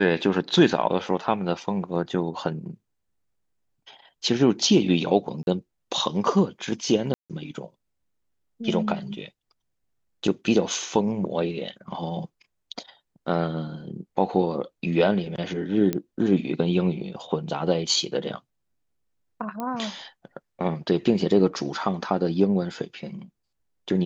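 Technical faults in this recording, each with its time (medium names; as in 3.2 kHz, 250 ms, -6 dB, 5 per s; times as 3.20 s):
5.43–5.47 s: dropout 41 ms
7.14–7.30 s: dropout 157 ms
15.93 s: pop -12 dBFS
19.60 s: pop -18 dBFS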